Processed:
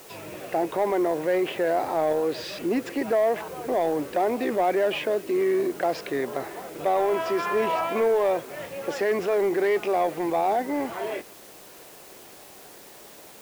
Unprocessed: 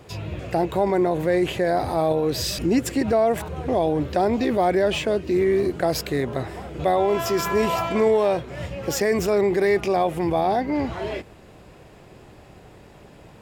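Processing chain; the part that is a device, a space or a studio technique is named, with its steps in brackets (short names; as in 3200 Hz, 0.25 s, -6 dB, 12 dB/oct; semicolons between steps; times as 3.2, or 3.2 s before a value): tape answering machine (BPF 330–2800 Hz; soft clip -15 dBFS, distortion -19 dB; wow and flutter; white noise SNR 23 dB)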